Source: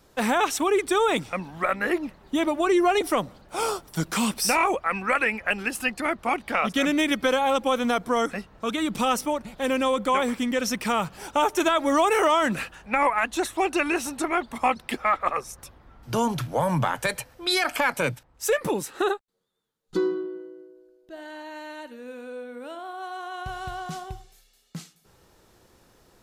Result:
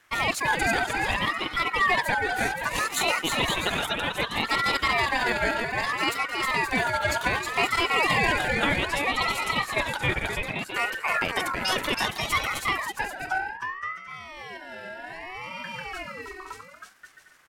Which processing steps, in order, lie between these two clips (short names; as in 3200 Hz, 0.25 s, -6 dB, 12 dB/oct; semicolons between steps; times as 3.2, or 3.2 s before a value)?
bouncing-ball echo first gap 0.48 s, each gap 0.65×, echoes 5; tempo 1.5×; ring modulator with a swept carrier 1400 Hz, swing 20%, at 0.64 Hz